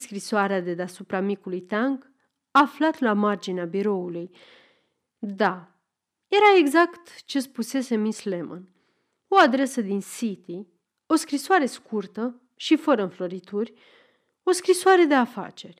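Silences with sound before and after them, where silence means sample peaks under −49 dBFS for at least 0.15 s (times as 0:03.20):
0:02.07–0:02.55
0:04.67–0:05.23
0:05.68–0:06.31
0:08.66–0:09.31
0:10.64–0:11.10
0:12.37–0:12.59
0:14.03–0:14.47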